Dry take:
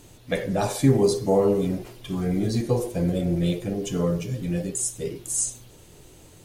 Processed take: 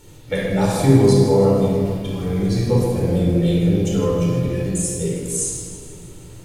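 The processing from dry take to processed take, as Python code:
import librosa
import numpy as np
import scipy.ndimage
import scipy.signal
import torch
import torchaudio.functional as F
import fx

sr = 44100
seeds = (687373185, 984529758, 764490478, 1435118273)

y = fx.peak_eq(x, sr, hz=280.0, db=-6.0, octaves=1.4, at=(1.2, 2.58))
y = fx.echo_feedback(y, sr, ms=158, feedback_pct=58, wet_db=-13.5)
y = fx.room_shoebox(y, sr, seeds[0], volume_m3=2500.0, walls='mixed', distance_m=4.4)
y = y * librosa.db_to_amplitude(-1.5)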